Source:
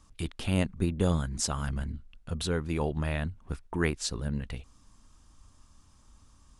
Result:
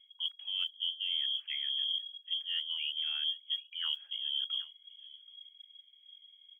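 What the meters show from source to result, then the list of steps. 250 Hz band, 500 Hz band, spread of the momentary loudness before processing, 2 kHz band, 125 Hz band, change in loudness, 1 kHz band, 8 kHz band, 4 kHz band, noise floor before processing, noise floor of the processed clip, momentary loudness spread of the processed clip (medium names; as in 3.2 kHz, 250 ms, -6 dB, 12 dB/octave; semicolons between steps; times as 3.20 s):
under -40 dB, under -40 dB, 11 LU, -8.0 dB, under -40 dB, -1.5 dB, under -20 dB, under -35 dB, +12.0 dB, -60 dBFS, -63 dBFS, 19 LU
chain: frequency inversion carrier 3.3 kHz; on a send: delay 778 ms -23 dB; on the sum: modulation noise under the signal 22 dB; high-pass 1.2 kHz 12 dB/octave; reverse; compression 8:1, threshold -36 dBFS, peak gain reduction 16 dB; reverse; spectral contrast expander 1.5:1; trim +2 dB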